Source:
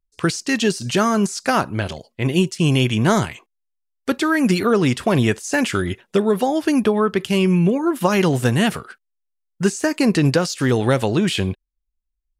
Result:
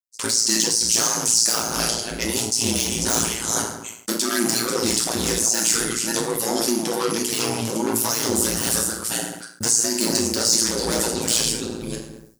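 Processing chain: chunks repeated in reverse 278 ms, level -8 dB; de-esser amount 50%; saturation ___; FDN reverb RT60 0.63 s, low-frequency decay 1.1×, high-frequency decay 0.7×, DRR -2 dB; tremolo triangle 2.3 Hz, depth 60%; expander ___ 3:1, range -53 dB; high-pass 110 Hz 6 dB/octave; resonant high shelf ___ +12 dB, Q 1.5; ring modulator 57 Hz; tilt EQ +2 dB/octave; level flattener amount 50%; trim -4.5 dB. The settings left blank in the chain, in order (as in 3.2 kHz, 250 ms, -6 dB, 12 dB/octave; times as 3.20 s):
-18 dBFS, -44 dBFS, 3.9 kHz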